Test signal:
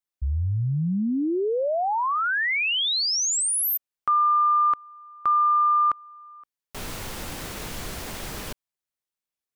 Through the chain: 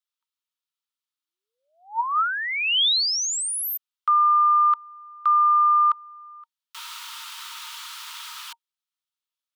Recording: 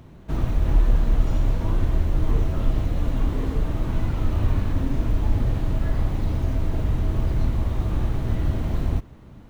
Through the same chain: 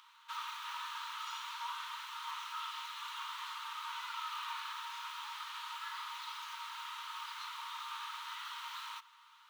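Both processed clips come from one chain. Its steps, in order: rippled Chebyshev high-pass 900 Hz, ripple 9 dB; gain +5 dB

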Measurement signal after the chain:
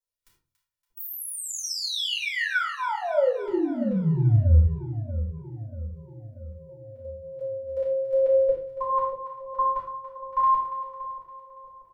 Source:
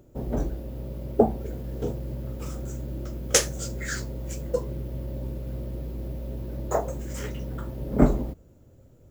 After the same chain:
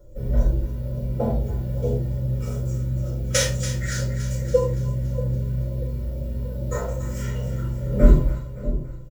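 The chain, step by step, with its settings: notch 820 Hz, Q 20; de-hum 47.28 Hz, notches 3; dynamic EQ 3000 Hz, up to +5 dB, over -41 dBFS, Q 0.73; comb 2.1 ms, depth 39%; LFO notch saw down 2.3 Hz 220–2600 Hz; split-band echo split 810 Hz, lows 0.636 s, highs 0.283 s, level -12 dB; shoebox room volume 170 m³, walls furnished, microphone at 5.8 m; harmonic-percussive split percussive -12 dB; gain -6 dB

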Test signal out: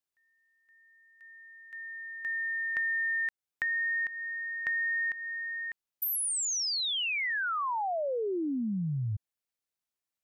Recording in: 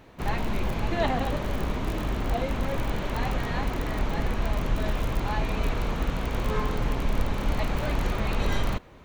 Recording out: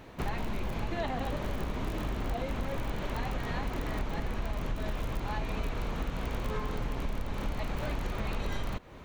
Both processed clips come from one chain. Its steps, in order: compressor 5:1, threshold -32 dBFS; gain +2 dB

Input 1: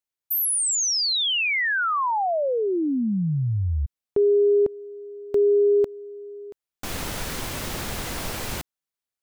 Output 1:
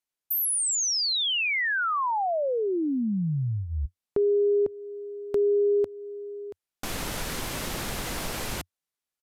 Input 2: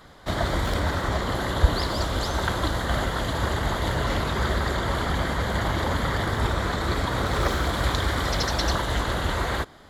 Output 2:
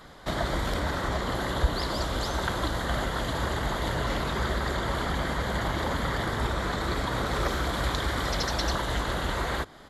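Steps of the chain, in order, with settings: bell 90 Hz -13 dB 0.2 oct; in parallel at +2.5 dB: compressor, threshold -31 dBFS; on the sum: downsampling 32000 Hz; gain -6.5 dB

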